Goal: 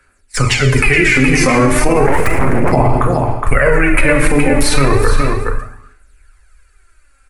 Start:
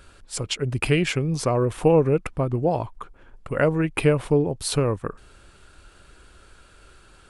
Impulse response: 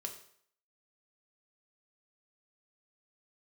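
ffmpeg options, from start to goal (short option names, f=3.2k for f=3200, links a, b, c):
-filter_complex "[0:a]acrossover=split=120|4900[a][b][c];[c]acompressor=threshold=-46dB:ratio=20[d];[a][b][d]amix=inputs=3:normalize=0,agate=range=-32dB:threshold=-37dB:ratio=16:detection=peak,asubboost=boost=6.5:cutoff=66,crystalizer=i=9.5:c=0,acrossover=split=210[e][f];[f]acompressor=threshold=-33dB:ratio=1.5[g];[e][g]amix=inputs=2:normalize=0[h];[1:a]atrim=start_sample=2205,afade=t=out:st=0.33:d=0.01,atrim=end_sample=14994,asetrate=28224,aresample=44100[i];[h][i]afir=irnorm=-1:irlink=0,aphaser=in_gain=1:out_gain=1:delay=3.8:decay=0.58:speed=0.34:type=sinusoidal,aecho=1:1:417:0.335,asplit=3[j][k][l];[j]afade=t=out:st=2.06:d=0.02[m];[k]aeval=exprs='abs(val(0))':c=same,afade=t=in:st=2.06:d=0.02,afade=t=out:st=2.71:d=0.02[n];[l]afade=t=in:st=2.71:d=0.02[o];[m][n][o]amix=inputs=3:normalize=0,highshelf=f=2.6k:t=q:w=3:g=-7.5,alimiter=level_in=17dB:limit=-1dB:release=50:level=0:latency=1,volume=-1dB"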